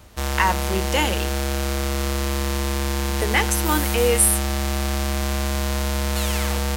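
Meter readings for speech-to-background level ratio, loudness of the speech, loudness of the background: 2.0 dB, −22.0 LKFS, −24.0 LKFS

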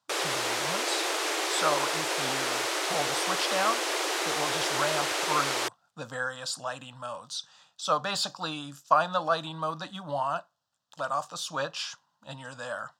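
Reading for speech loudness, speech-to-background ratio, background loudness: −32.0 LKFS, −4.0 dB, −28.0 LKFS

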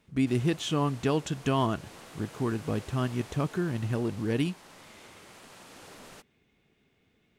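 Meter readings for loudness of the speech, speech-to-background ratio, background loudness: −30.0 LKFS, 19.0 dB, −49.0 LKFS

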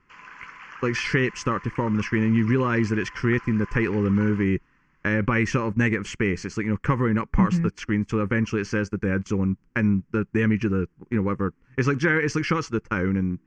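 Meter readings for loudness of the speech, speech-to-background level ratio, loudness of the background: −24.0 LKFS, 18.5 dB, −42.5 LKFS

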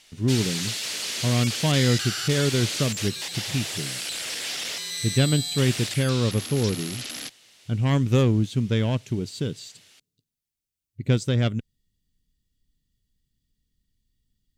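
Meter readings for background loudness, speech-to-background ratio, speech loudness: −28.5 LKFS, 3.5 dB, −25.0 LKFS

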